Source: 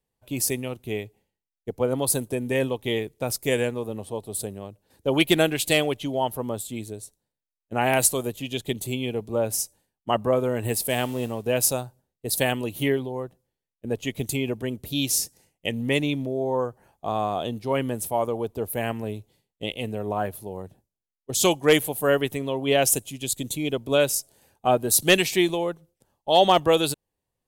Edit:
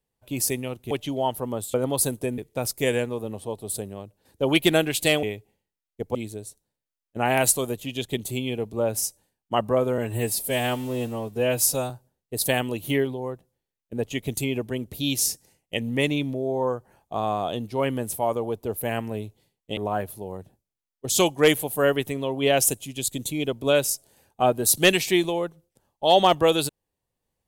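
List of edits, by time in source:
0.91–1.83 swap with 5.88–6.71
2.47–3.03 cut
10.54–11.82 stretch 1.5×
19.69–20.02 cut

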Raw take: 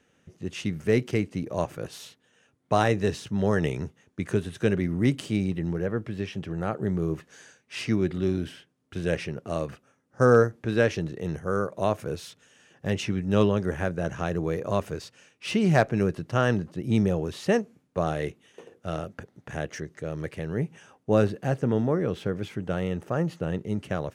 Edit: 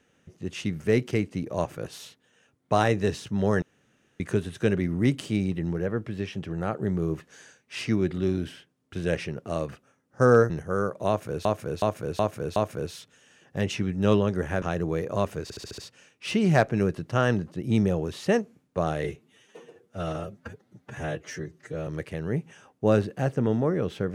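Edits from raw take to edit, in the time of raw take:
3.62–4.2 room tone
10.5–11.27 cut
11.85–12.22 loop, 5 plays
13.91–14.17 cut
14.98 stutter 0.07 s, 6 plays
18.24–20.13 stretch 1.5×

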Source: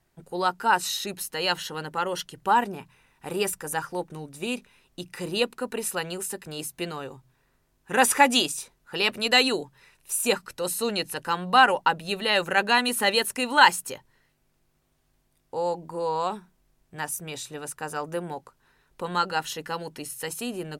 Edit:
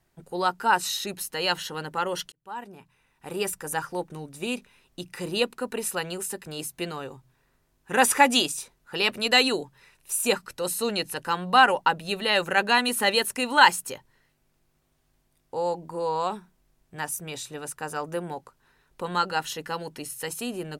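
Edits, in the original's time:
2.32–3.72 fade in

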